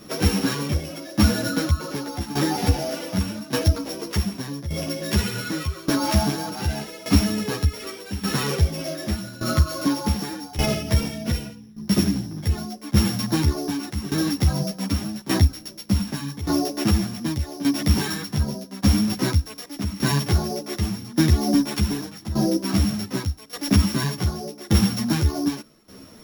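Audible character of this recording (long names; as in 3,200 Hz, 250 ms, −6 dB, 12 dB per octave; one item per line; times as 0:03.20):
a buzz of ramps at a fixed pitch in blocks of 8 samples
tremolo saw down 0.85 Hz, depth 85%
a shimmering, thickened sound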